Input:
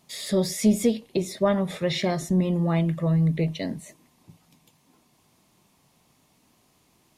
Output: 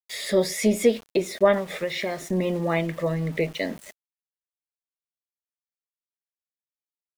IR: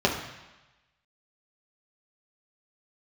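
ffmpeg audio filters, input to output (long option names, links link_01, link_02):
-filter_complex "[0:a]equalizer=frequency=125:width_type=o:width=1:gain=-12,equalizer=frequency=500:width_type=o:width=1:gain=6,equalizer=frequency=2000:width_type=o:width=1:gain=9,asettb=1/sr,asplit=3[link_01][link_02][link_03];[link_01]atrim=end=1.574[link_04];[link_02]atrim=start=1.57:end=2.29,asetpts=PTS-STARTPTS,afade=type=in:duration=0.004:curve=qsin,afade=type=out:start_time=0.716:duration=0.004:curve=qsin,acompressor=threshold=-26dB:ratio=4[link_05];[link_03]atrim=start=2.286[link_06];[link_04][link_05]acrossfade=duration=0.004:curve1=hsin:curve2=qsin[link_07];[link_07][link_06]acrossfade=duration=0.004:curve1=qsin:curve2=hsin,aeval=exprs='val(0)*gte(abs(val(0)),0.00944)':channel_layout=same"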